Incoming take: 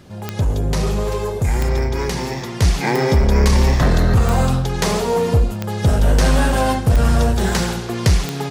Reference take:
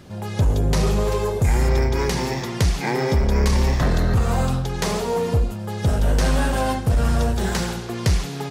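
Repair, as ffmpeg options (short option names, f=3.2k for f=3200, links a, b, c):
-af "adeclick=t=4,asetnsamples=n=441:p=0,asendcmd='2.62 volume volume -4.5dB',volume=0dB"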